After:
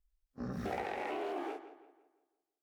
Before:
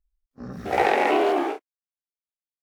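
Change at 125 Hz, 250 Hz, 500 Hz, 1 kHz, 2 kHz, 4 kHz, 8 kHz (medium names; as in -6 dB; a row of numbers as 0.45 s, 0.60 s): -5.0 dB, -13.0 dB, -17.0 dB, -17.5 dB, -17.5 dB, -17.0 dB, no reading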